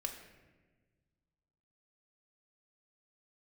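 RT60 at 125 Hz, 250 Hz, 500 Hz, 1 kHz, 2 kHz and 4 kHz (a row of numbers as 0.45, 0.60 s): 2.3, 2.0, 1.6, 1.1, 1.2, 0.85 s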